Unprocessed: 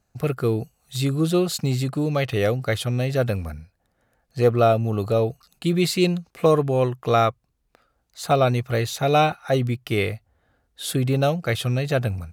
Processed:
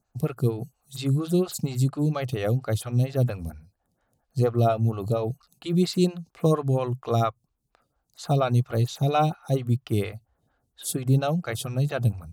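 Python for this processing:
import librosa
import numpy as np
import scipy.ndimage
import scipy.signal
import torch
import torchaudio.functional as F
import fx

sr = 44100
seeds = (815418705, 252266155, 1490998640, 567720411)

y = fx.graphic_eq(x, sr, hz=(125, 500, 2000, 8000), db=(6, -5, -7, 3))
y = fx.stagger_phaser(y, sr, hz=4.3)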